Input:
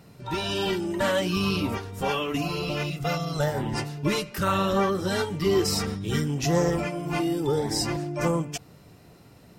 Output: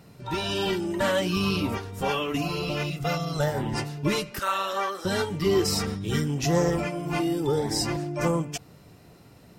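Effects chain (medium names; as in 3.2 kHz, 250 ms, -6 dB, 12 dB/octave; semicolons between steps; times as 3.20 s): 4.39–5.05 s: high-pass 700 Hz 12 dB/octave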